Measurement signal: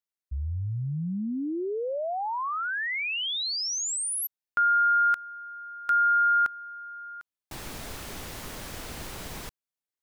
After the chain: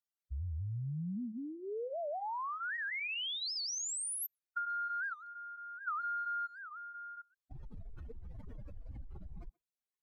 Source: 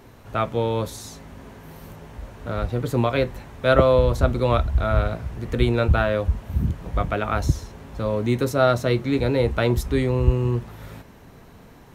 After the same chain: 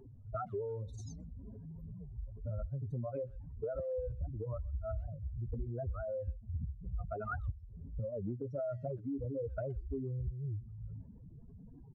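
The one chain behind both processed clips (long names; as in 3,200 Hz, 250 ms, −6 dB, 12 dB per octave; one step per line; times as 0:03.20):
expanding power law on the bin magnitudes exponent 3.5
downward compressor 10 to 1, threshold −30 dBFS
flanger 1.1 Hz, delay 0.7 ms, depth 1.4 ms, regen −74%
far-end echo of a speakerphone 130 ms, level −26 dB
wow of a warped record 78 rpm, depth 250 cents
level −1.5 dB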